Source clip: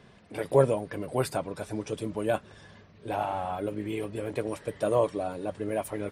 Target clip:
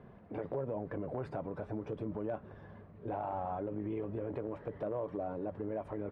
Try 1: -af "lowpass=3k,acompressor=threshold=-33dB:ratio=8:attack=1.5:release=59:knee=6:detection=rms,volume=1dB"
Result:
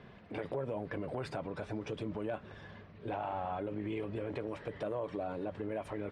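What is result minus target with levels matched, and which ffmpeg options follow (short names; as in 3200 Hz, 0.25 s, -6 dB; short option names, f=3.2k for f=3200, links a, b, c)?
4000 Hz band +14.5 dB
-af "lowpass=1.1k,acompressor=threshold=-33dB:ratio=8:attack=1.5:release=59:knee=6:detection=rms,volume=1dB"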